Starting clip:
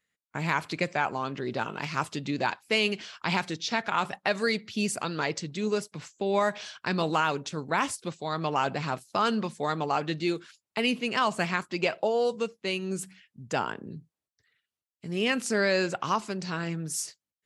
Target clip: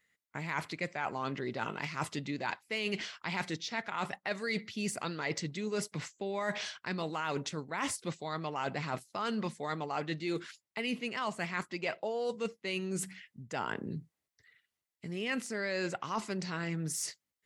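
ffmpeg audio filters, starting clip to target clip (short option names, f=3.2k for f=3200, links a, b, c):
-af "deesser=0.6,equalizer=f=2k:w=7.4:g=8,areverse,acompressor=threshold=-35dB:ratio=6,areverse,volume=2.5dB"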